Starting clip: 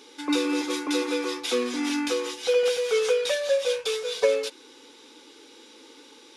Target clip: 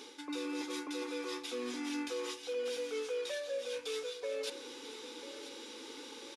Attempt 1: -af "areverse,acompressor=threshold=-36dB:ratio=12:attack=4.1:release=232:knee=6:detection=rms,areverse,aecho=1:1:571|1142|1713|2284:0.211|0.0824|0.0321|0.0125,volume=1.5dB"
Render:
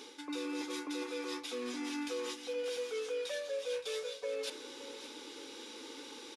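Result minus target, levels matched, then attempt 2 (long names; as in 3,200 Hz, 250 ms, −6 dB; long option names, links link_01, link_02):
echo 420 ms early
-af "areverse,acompressor=threshold=-36dB:ratio=12:attack=4.1:release=232:knee=6:detection=rms,areverse,aecho=1:1:991|1982|2973|3964:0.211|0.0824|0.0321|0.0125,volume=1.5dB"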